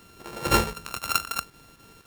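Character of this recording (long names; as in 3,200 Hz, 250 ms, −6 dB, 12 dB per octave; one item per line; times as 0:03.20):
a buzz of ramps at a fixed pitch in blocks of 32 samples
chopped level 3.9 Hz, depth 60%, duty 85%
a quantiser's noise floor 10 bits, dither none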